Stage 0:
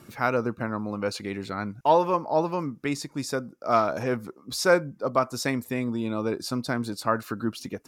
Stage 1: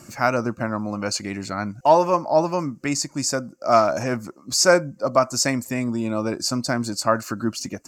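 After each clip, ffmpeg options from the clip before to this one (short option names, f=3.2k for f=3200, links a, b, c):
-af "superequalizer=7b=0.501:8b=1.41:13b=0.447:14b=2:15b=3.55,volume=4dB"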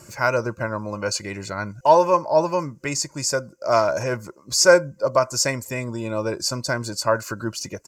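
-af "aecho=1:1:2:0.61,volume=-1dB"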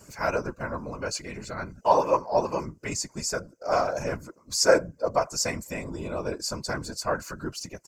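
-af "afftfilt=real='hypot(re,im)*cos(2*PI*random(0))':imag='hypot(re,im)*sin(2*PI*random(1))':win_size=512:overlap=0.75"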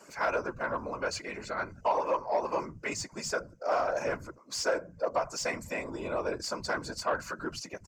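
-filter_complex "[0:a]acompressor=threshold=-24dB:ratio=6,asplit=2[a][b];[b]highpass=f=720:p=1,volume=12dB,asoftclip=type=tanh:threshold=-15dB[c];[a][c]amix=inputs=2:normalize=0,lowpass=f=2.1k:p=1,volume=-6dB,acrossover=split=160[d][e];[d]adelay=80[f];[f][e]amix=inputs=2:normalize=0,volume=-2.5dB"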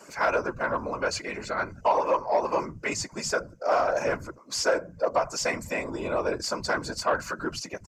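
-af "aresample=32000,aresample=44100,volume=5dB"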